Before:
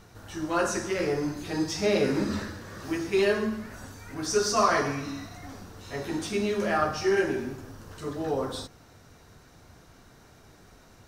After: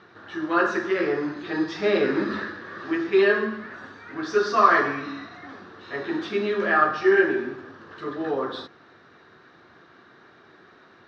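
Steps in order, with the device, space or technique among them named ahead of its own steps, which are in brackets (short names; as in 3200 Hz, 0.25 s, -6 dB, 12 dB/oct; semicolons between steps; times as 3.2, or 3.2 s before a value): kitchen radio (speaker cabinet 190–4100 Hz, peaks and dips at 360 Hz +8 dB, 1200 Hz +8 dB, 1700 Hz +10 dB, 3700 Hz +4 dB)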